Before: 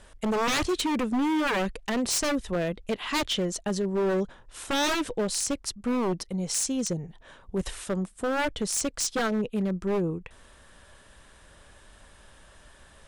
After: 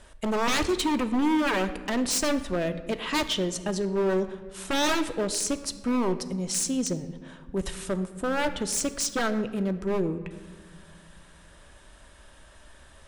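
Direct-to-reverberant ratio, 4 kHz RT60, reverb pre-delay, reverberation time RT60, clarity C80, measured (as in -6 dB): 9.0 dB, 1.0 s, 3 ms, 1.5 s, 14.0 dB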